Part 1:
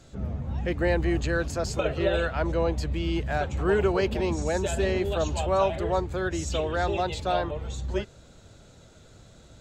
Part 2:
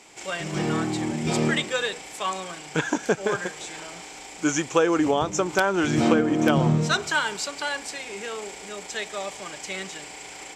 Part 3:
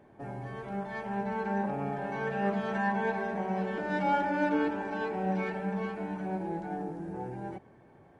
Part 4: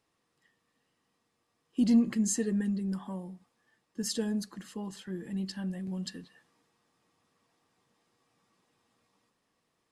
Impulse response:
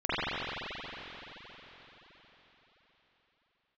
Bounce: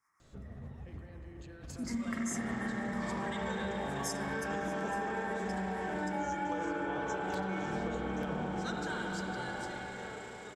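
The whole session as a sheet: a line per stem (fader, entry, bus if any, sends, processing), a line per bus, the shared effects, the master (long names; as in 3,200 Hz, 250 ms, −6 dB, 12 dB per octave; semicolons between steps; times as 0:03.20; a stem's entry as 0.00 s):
−17.5 dB, 0.20 s, send −15 dB, compressor whose output falls as the input rises −34 dBFS, ratio −1
−18.5 dB, 1.75 s, send −11 dB, parametric band 2,600 Hz −10 dB 0.23 octaves
−7.0 dB, 2.10 s, send −10.5 dB, no processing
−1.0 dB, 0.00 s, send −7 dB, elliptic band-stop filter 2,200–5,300 Hz; low shelf with overshoot 800 Hz −12.5 dB, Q 3; two-band tremolo in antiphase 8.2 Hz, depth 50%, crossover 470 Hz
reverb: on, RT60 4.6 s, pre-delay 43 ms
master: downward compressor, threshold −32 dBFS, peak gain reduction 8.5 dB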